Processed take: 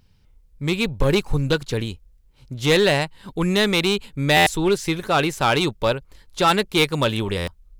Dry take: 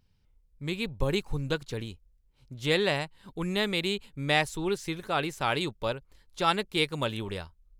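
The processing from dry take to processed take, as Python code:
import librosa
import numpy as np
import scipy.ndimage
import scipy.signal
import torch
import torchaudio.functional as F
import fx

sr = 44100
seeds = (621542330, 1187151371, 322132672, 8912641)

p1 = 10.0 ** (-23.0 / 20.0) * (np.abs((x / 10.0 ** (-23.0 / 20.0) + 3.0) % 4.0 - 2.0) - 1.0)
p2 = x + (p1 * librosa.db_to_amplitude(-3.0))
p3 = fx.buffer_glitch(p2, sr, at_s=(4.36, 7.37), block=512, repeats=8)
y = p3 * librosa.db_to_amplitude(6.0)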